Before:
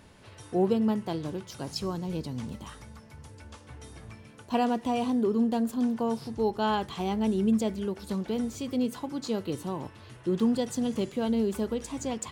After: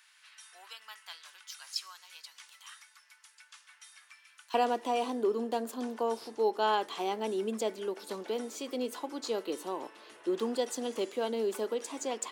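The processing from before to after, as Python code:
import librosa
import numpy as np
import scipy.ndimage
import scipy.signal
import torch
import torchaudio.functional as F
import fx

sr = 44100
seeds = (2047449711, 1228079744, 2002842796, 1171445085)

y = fx.highpass(x, sr, hz=fx.steps((0.0, 1400.0), (4.54, 330.0)), slope=24)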